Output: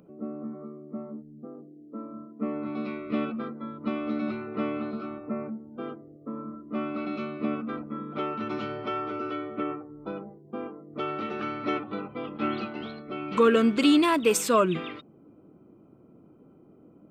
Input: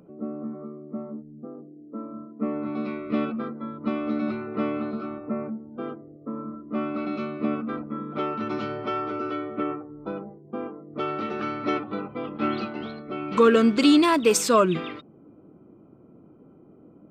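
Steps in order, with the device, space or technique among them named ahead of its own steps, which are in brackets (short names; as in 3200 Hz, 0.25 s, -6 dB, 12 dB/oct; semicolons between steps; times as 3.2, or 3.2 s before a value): dynamic EQ 4900 Hz, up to -6 dB, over -47 dBFS, Q 1.3; presence and air boost (bell 3000 Hz +3.5 dB 1 oct; high shelf 10000 Hz +5 dB); gain -3 dB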